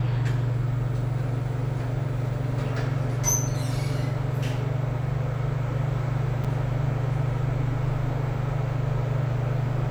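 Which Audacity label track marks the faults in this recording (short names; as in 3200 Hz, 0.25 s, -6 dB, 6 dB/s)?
6.440000	6.450000	gap 6.1 ms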